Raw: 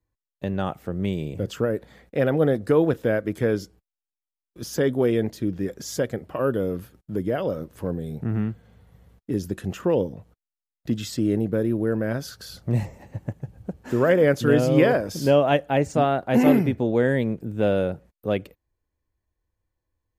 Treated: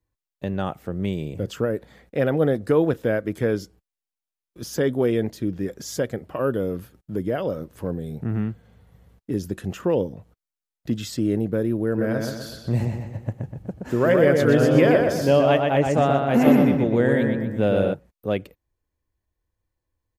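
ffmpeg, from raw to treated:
-filter_complex "[0:a]asplit=3[s0][s1][s2];[s0]afade=t=out:st=11.97:d=0.02[s3];[s1]asplit=2[s4][s5];[s5]adelay=123,lowpass=f=4300:p=1,volume=0.668,asplit=2[s6][s7];[s7]adelay=123,lowpass=f=4300:p=1,volume=0.48,asplit=2[s8][s9];[s9]adelay=123,lowpass=f=4300:p=1,volume=0.48,asplit=2[s10][s11];[s11]adelay=123,lowpass=f=4300:p=1,volume=0.48,asplit=2[s12][s13];[s13]adelay=123,lowpass=f=4300:p=1,volume=0.48,asplit=2[s14][s15];[s15]adelay=123,lowpass=f=4300:p=1,volume=0.48[s16];[s4][s6][s8][s10][s12][s14][s16]amix=inputs=7:normalize=0,afade=t=in:st=11.97:d=0.02,afade=t=out:st=17.93:d=0.02[s17];[s2]afade=t=in:st=17.93:d=0.02[s18];[s3][s17][s18]amix=inputs=3:normalize=0"

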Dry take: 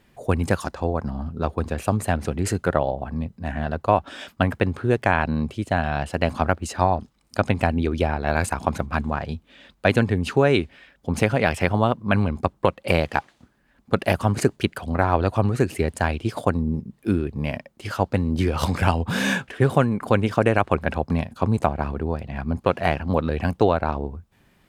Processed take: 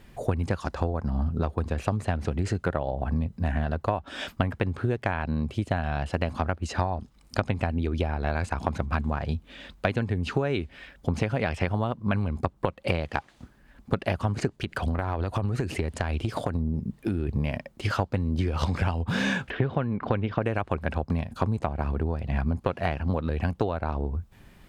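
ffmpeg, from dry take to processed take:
-filter_complex "[0:a]asettb=1/sr,asplit=3[s0][s1][s2];[s0]atrim=end=14.494[s3];[s1]atrim=start=14.49:end=17.29,asetpts=PTS-STARTPTS,afade=t=in:d=0.004:c=qsin,afade=t=out:st=2.796:d=0.004:c=qsin,acompressor=threshold=0.0447:ratio=5:attack=3.2:release=140:knee=1:detection=peak[s4];[s2]atrim=start=17.286[s5];[s3][s4]acrossfade=d=0.004:c1=hsin:c2=qsin[s6];[s6][s5]acrossfade=d=0.004:c1=qsin:c2=hsin,asettb=1/sr,asplit=3[s7][s8][s9];[s7]atrim=end=19.504[s10];[s8]atrim=start=19.5:end=20.44,asetpts=PTS-STARTPTS,afade=t=in:d=0.004:c=qsin,afade=t=out:st=0.936:d=0.004:c=qsin,lowpass=f=3800:w=0.5412,lowpass=f=3800:w=1.3066[s11];[s9]atrim=start=20.436[s12];[s10][s11]acrossfade=d=0.004:c1=hsin:c2=qsin[s13];[s13][s12]acrossfade=d=0.004:c1=qsin:c2=hsin,acrossover=split=6600[s14][s15];[s15]acompressor=threshold=0.00141:ratio=4:attack=1:release=60[s16];[s14][s16]amix=inputs=2:normalize=0,lowshelf=f=77:g=11,acompressor=threshold=0.0501:ratio=12,volume=1.58"

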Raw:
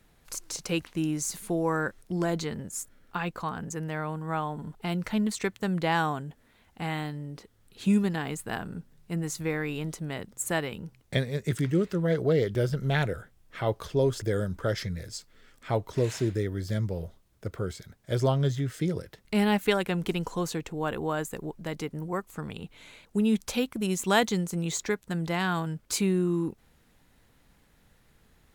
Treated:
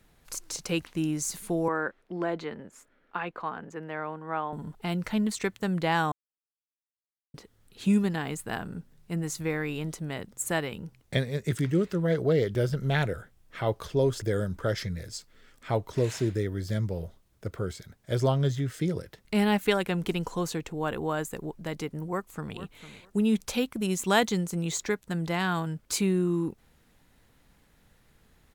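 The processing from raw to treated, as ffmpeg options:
-filter_complex "[0:a]asettb=1/sr,asplit=3[s0][s1][s2];[s0]atrim=end=1.684[s3];[s1]atrim=start=1.68:end=4.53,asetpts=PTS-STARTPTS,afade=t=in:d=0.004:c=qsin,afade=t=out:st=2.846:d=0.004:c=qsin,acrossover=split=250 3300:gain=0.2 1 0.0891[s4][s5][s6];[s4][s5][s6]amix=inputs=3:normalize=0[s7];[s2]atrim=start=4.526[s8];[s3][s7]acrossfade=d=0.004:c1=hsin:c2=qsin[s9];[s9][s8]acrossfade=d=0.004:c1=qsin:c2=hsin,asplit=2[s10][s11];[s11]afade=t=in:st=22.05:d=0.01,afade=t=out:st=22.55:d=0.01,aecho=0:1:450|900:0.211349|0.0317023[s12];[s10][s12]amix=inputs=2:normalize=0,asplit=3[s13][s14][s15];[s13]atrim=end=6.12,asetpts=PTS-STARTPTS,afade=t=out:st=6.116:d=0.004:c=hsin[s16];[s14]atrim=start=6.12:end=7.34,asetpts=PTS-STARTPTS,volume=0[s17];[s15]atrim=start=7.34,asetpts=PTS-STARTPTS,afade=t=in:d=0.004:c=hsin[s18];[s16][s17][s18]concat=n=3:v=0:a=1"

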